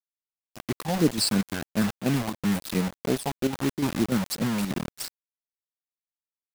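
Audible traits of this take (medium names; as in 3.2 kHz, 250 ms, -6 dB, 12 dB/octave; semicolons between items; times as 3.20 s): phasing stages 12, 3 Hz, lowest notch 340–1200 Hz; a quantiser's noise floor 6-bit, dither none; chopped level 3.4 Hz, depth 60%, duty 80%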